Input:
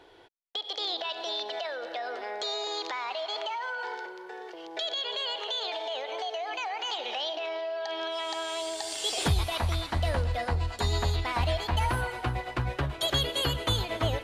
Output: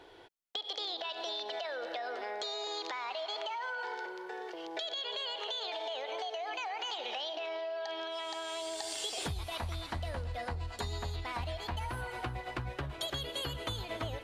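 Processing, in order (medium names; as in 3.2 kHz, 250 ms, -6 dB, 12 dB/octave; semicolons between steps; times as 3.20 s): compression, threshold -35 dBFS, peak gain reduction 13.5 dB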